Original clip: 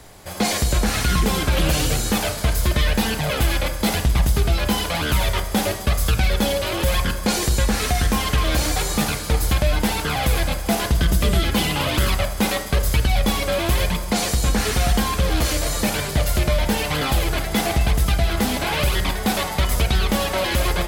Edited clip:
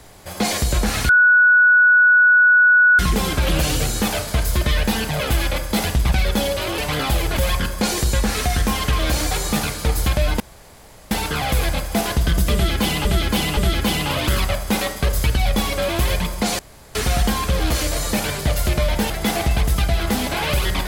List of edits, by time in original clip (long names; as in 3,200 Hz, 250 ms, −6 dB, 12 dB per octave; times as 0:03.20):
0:01.09: insert tone 1,470 Hz −9 dBFS 1.90 s
0:04.22–0:06.17: remove
0:09.85: splice in room tone 0.71 s
0:11.27–0:11.79: repeat, 3 plays
0:14.29–0:14.65: fill with room tone
0:16.80–0:17.40: move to 0:06.83